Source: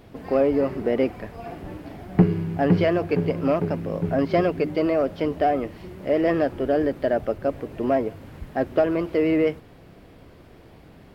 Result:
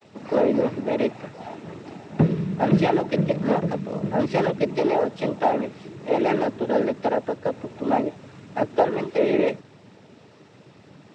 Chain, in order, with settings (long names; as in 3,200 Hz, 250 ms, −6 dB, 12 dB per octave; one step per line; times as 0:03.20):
noise gate with hold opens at −43 dBFS
high-shelf EQ 4,500 Hz +6.5 dB
cochlear-implant simulation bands 12